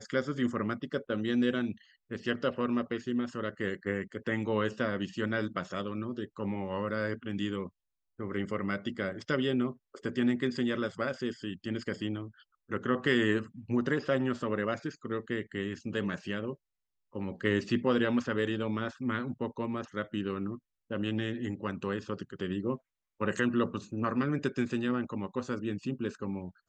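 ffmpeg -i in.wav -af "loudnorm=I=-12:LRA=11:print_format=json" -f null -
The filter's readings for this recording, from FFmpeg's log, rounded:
"input_i" : "-33.2",
"input_tp" : "-14.3",
"input_lra" : "3.7",
"input_thresh" : "-43.4",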